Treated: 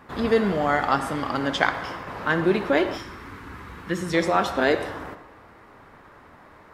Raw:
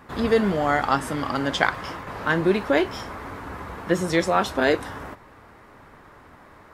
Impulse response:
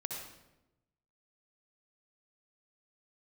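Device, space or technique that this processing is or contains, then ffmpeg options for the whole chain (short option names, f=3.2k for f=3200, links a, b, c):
filtered reverb send: -filter_complex "[0:a]asplit=2[a][b];[b]highpass=f=170:p=1,lowpass=6k[c];[1:a]atrim=start_sample=2205[d];[c][d]afir=irnorm=-1:irlink=0,volume=-5dB[e];[a][e]amix=inputs=2:normalize=0,asettb=1/sr,asplit=3[f][g][h];[f]atrim=end=2.974[i];[g]atrim=start=2.97:end=4.14,asetpts=PTS-STARTPTS,afade=t=in:d=0.004:c=qsin,afade=t=out:st=1.166:d=0.004:c=qsin,equalizer=f=640:w=1.2:g=-13.5[j];[h]atrim=start=4.136[k];[i][j]acrossfade=d=0.004:c1=hsin:c2=qsin[l];[l][k]acrossfade=d=0.004:c1=qsin:c2=hsin,volume=-3.5dB"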